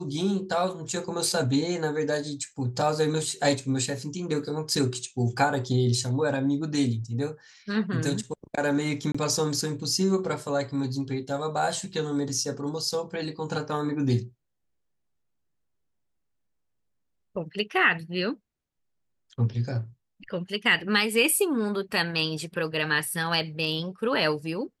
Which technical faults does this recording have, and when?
9.12–9.14 gap 25 ms

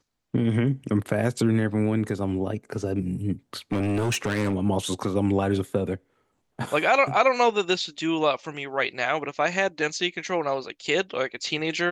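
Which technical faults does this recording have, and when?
3.72–4.55 clipped -21 dBFS

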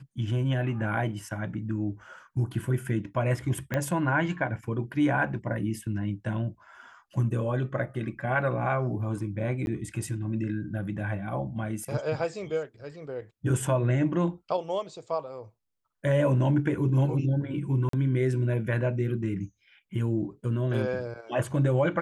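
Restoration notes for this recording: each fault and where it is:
3.74 pop -15 dBFS
9.66–9.67 gap 11 ms
17.89–17.93 gap 43 ms

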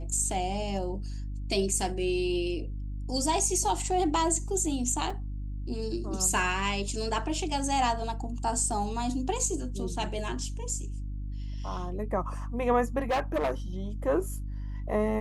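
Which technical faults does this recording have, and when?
hum 50 Hz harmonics 6 -35 dBFS
5.1 gap 3.9 ms
12.99–13.51 clipped -23.5 dBFS

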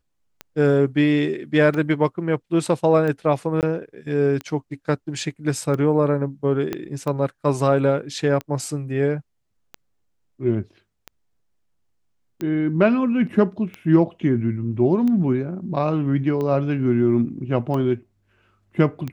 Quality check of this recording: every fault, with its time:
tick 45 rpm -17 dBFS
3.61–3.63 gap 18 ms
6.73 pop -12 dBFS

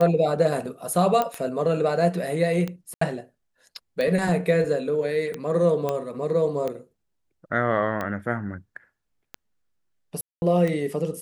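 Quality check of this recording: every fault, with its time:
tick 45 rpm -16 dBFS
1.22 pop -11 dBFS
2.94–3.01 gap 74 ms
5.89 pop -13 dBFS
10.21–10.42 gap 0.211 s

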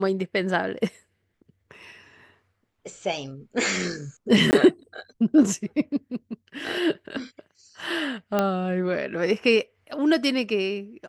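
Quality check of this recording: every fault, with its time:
4.51–4.53 gap 19 ms
8.39 pop -9 dBFS

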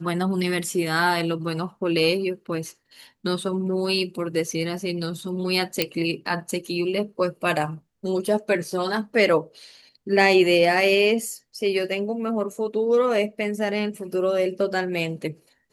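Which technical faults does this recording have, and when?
5.82 pop -5 dBFS

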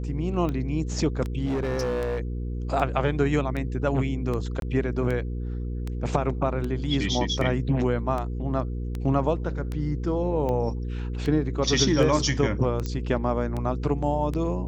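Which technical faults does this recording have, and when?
hum 60 Hz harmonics 8 -30 dBFS
tick 78 rpm -19 dBFS
1.45–2.19 clipped -23 dBFS
4.6–4.62 gap 22 ms
12.86 pop -17 dBFS

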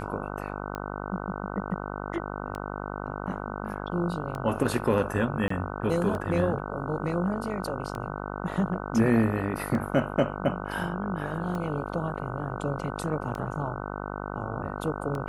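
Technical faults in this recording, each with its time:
buzz 50 Hz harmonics 30 -35 dBFS
tick 33 1/3 rpm -22 dBFS
5.48–5.5 gap 24 ms

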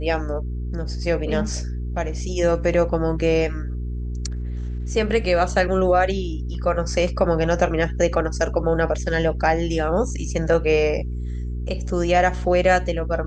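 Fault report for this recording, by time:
hum 60 Hz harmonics 7 -27 dBFS

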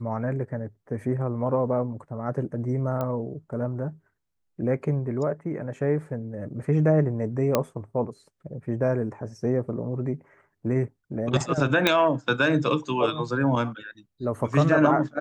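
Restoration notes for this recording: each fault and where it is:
3.01 pop -17 dBFS
7.55 pop -7 dBFS
11.87 pop -5 dBFS

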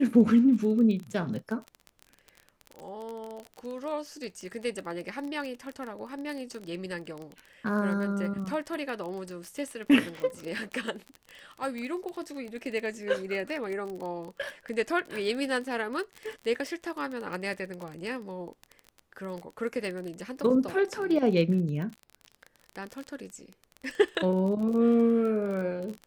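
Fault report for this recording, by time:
crackle 27/s -33 dBFS

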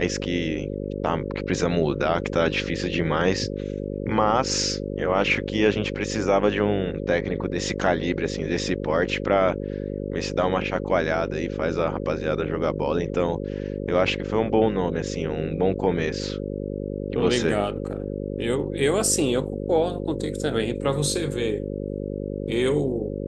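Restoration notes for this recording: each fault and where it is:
buzz 50 Hz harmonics 11 -30 dBFS

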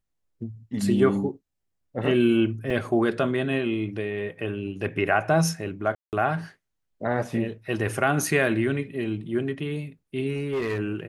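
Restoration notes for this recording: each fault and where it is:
2.7 gap 3.9 ms
5.95–6.13 gap 0.178 s
10.35–10.79 clipped -23 dBFS

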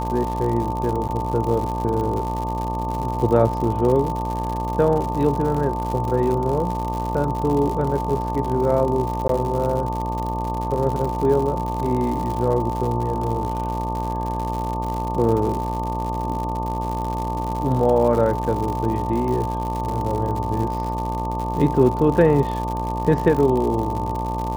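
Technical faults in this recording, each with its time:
buzz 60 Hz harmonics 20 -27 dBFS
crackle 120/s -26 dBFS
tone 890 Hz -26 dBFS
1.08–1.09 gap 8.6 ms
9.28–9.29 gap 13 ms

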